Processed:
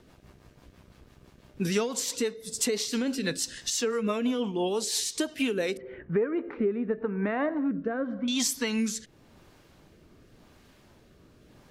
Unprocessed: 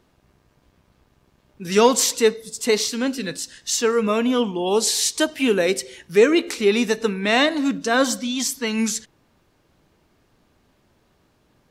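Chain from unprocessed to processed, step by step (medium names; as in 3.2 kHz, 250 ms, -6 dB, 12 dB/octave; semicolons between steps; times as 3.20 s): 5.77–8.28 s: low-pass 1.6 kHz 24 dB/octave; compression 16:1, threshold -30 dBFS, peak gain reduction 21.5 dB; rotary cabinet horn 6 Hz, later 0.9 Hz, at 5.41 s; trim +7 dB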